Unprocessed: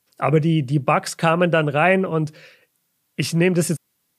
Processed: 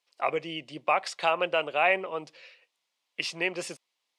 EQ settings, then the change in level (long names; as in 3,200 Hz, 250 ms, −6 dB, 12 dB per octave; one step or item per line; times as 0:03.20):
high-pass filter 860 Hz 12 dB per octave
low-pass filter 4,000 Hz 12 dB per octave
parametric band 1,500 Hz −11.5 dB 0.67 octaves
0.0 dB